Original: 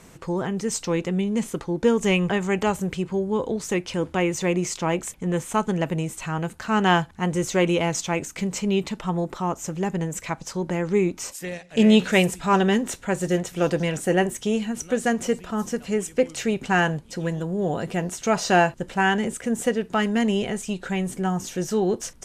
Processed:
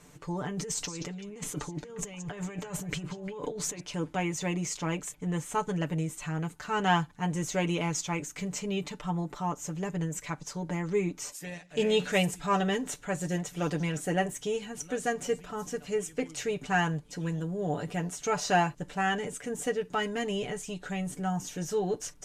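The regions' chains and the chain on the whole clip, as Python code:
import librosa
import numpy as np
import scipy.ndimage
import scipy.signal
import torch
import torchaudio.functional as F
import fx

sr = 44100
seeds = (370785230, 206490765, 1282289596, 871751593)

y = fx.chain(x, sr, fx.over_compress(threshold_db=-31.0, ratio=-1.0),
    fx.echo_stepped(ms=176, hz=5100.0, octaves=-1.4, feedback_pct=70, wet_db=-7.5), at=(0.57, 3.8))
y = fx.peak_eq(y, sr, hz=6700.0, db=2.5, octaves=0.33)
y = y + 0.76 * np.pad(y, (int(6.8 * sr / 1000.0), 0))[:len(y)]
y = y * librosa.db_to_amplitude(-8.5)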